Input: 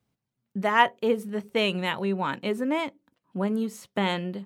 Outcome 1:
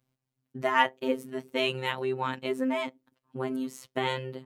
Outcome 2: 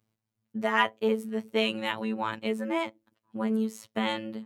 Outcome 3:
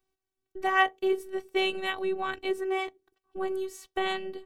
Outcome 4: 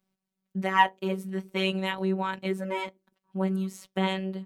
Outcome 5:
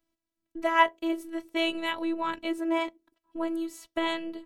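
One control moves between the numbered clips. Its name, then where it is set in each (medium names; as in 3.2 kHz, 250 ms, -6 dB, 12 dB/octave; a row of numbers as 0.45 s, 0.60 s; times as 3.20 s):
robot voice, frequency: 130 Hz, 110 Hz, 380 Hz, 190 Hz, 330 Hz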